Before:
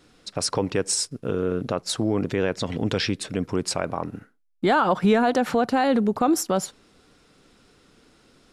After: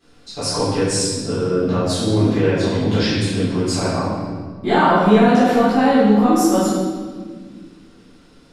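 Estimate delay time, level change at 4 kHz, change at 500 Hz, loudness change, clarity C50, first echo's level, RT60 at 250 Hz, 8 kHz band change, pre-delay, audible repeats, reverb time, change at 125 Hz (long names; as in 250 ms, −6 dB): no echo audible, +5.0 dB, +6.5 dB, +6.5 dB, −1.5 dB, no echo audible, 2.7 s, +3.0 dB, 3 ms, no echo audible, 1.6 s, +10.0 dB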